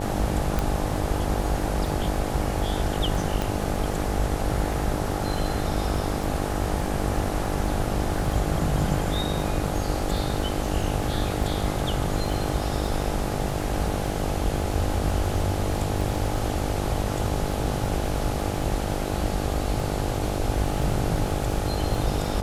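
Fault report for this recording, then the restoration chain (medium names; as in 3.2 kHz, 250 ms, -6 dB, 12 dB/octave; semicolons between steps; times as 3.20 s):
buzz 50 Hz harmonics 17 -30 dBFS
crackle 25 per s -31 dBFS
0.59 s: pop
3.42 s: pop -12 dBFS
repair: de-click; de-hum 50 Hz, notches 17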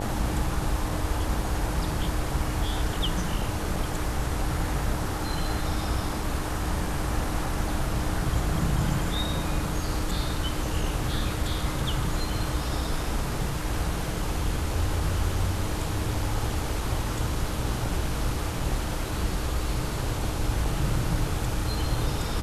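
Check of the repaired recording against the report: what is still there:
nothing left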